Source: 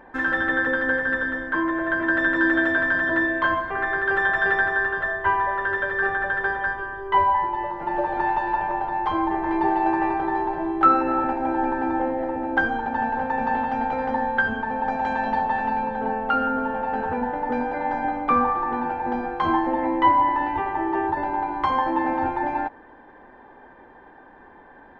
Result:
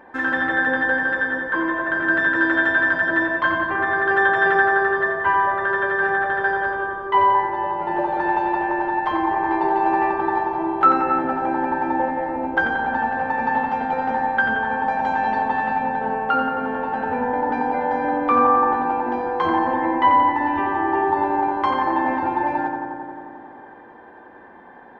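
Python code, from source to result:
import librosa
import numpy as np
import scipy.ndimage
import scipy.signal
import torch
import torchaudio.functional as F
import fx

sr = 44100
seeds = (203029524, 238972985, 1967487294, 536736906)

y = fx.highpass(x, sr, hz=140.0, slope=6)
y = fx.echo_filtered(y, sr, ms=89, feedback_pct=83, hz=2800.0, wet_db=-4.5)
y = y * 10.0 ** (1.5 / 20.0)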